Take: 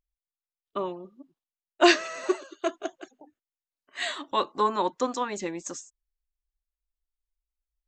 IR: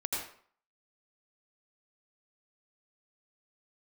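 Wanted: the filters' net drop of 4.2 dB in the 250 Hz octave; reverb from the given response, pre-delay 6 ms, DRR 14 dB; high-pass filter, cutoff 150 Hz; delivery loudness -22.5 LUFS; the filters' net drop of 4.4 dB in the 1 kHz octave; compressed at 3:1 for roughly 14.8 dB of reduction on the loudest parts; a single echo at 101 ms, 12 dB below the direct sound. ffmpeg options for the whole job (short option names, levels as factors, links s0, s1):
-filter_complex "[0:a]highpass=150,equalizer=f=250:t=o:g=-6.5,equalizer=f=1000:t=o:g=-5,acompressor=threshold=0.0158:ratio=3,aecho=1:1:101:0.251,asplit=2[s0][s1];[1:a]atrim=start_sample=2205,adelay=6[s2];[s1][s2]afir=irnorm=-1:irlink=0,volume=0.119[s3];[s0][s3]amix=inputs=2:normalize=0,volume=7.08"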